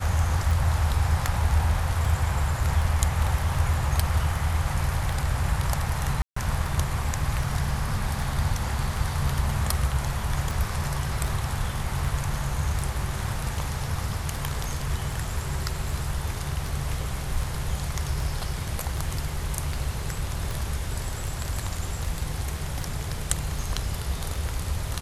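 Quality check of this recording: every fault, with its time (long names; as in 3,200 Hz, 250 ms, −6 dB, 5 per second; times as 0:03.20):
scratch tick 78 rpm
0:06.22–0:06.36: drop-out 144 ms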